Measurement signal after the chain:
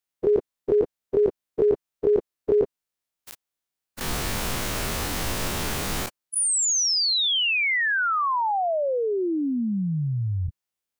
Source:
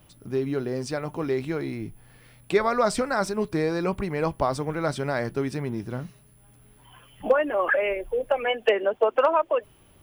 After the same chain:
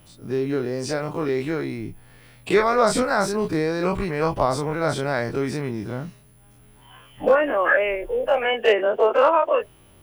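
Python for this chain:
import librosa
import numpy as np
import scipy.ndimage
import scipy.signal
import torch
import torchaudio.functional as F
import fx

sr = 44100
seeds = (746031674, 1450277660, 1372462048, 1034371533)

y = fx.spec_dilate(x, sr, span_ms=60)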